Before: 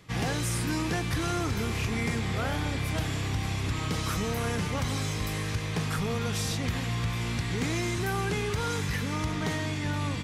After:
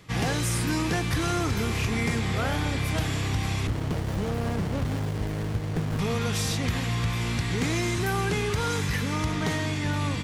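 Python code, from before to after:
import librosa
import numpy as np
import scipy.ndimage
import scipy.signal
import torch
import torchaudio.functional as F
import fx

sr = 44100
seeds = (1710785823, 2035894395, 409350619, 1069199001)

y = fx.running_max(x, sr, window=33, at=(3.67, 5.99))
y = y * librosa.db_to_amplitude(3.0)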